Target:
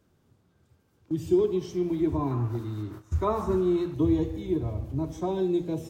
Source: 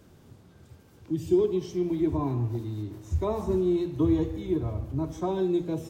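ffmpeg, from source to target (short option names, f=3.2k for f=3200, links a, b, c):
-af "agate=range=-12dB:threshold=-41dB:ratio=16:detection=peak,asetnsamples=n=441:p=0,asendcmd='2.31 equalizer g 13;3.94 equalizer g -4',equalizer=f=1.3k:w=2:g=2.5"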